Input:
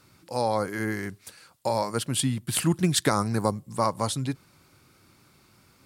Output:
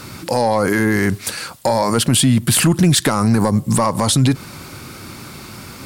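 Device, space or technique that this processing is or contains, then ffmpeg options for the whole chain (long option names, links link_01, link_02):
mastering chain: -af "equalizer=frequency=230:width_type=o:width=0.25:gain=3.5,acompressor=threshold=-29dB:ratio=2,asoftclip=type=tanh:threshold=-19dB,alimiter=level_in=29.5dB:limit=-1dB:release=50:level=0:latency=1,volume=-5.5dB"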